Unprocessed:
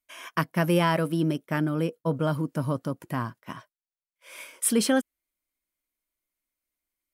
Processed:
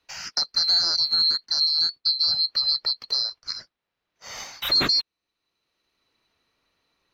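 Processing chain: band-swap scrambler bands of 4000 Hz; in parallel at +2 dB: limiter -16.5 dBFS, peak gain reduction 7.5 dB; on the sum: air absorption 280 m; three-band squash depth 40%; gain +6.5 dB

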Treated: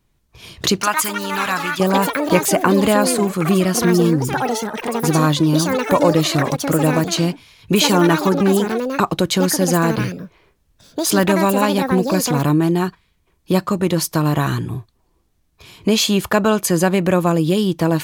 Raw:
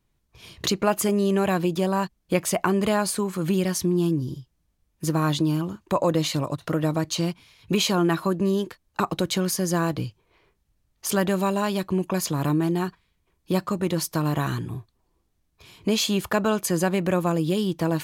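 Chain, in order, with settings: echoes that change speed 0.386 s, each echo +7 st, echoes 3, each echo -6 dB; 0.81–1.8 resonant low shelf 780 Hz -12.5 dB, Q 1.5; gain +7 dB

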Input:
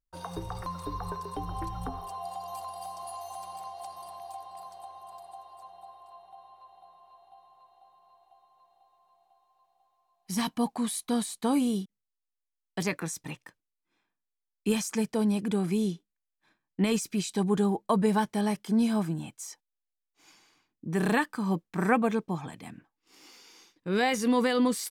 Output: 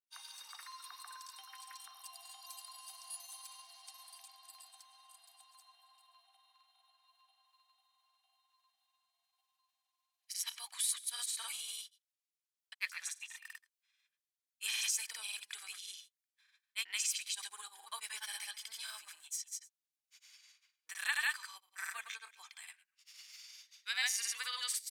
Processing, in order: Bessel high-pass 2500 Hz, order 4; echo 0.134 s -19.5 dB; grains, pitch spread up and down by 0 st; gain +3.5 dB

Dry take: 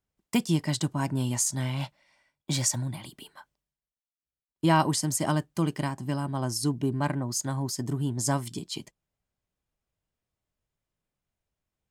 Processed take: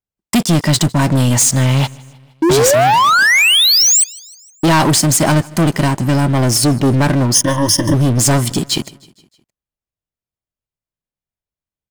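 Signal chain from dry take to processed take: 2.42–4.04 painted sound rise 310–8500 Hz -24 dBFS; sample leveller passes 5; 7.34–7.94 ripple EQ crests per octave 1.2, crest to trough 16 dB; feedback echo 0.155 s, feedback 57%, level -24 dB; gain +2 dB

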